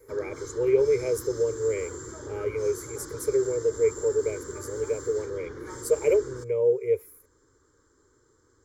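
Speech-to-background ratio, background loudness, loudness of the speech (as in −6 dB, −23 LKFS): 12.5 dB, −39.5 LKFS, −27.0 LKFS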